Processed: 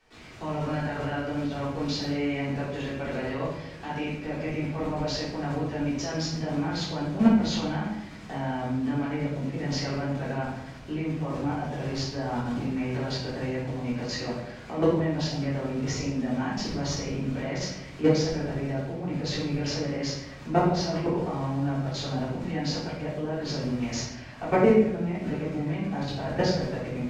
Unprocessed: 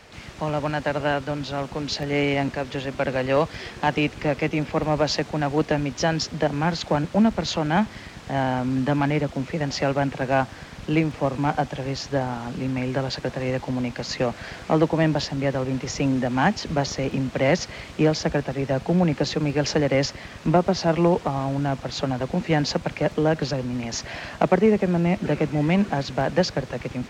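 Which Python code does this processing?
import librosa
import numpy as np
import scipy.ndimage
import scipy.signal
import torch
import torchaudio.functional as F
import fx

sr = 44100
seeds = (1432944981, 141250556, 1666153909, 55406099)

y = fx.level_steps(x, sr, step_db=16)
y = fx.room_shoebox(y, sr, seeds[0], volume_m3=240.0, walls='mixed', distance_m=3.5)
y = F.gain(torch.from_numpy(y), -9.0).numpy()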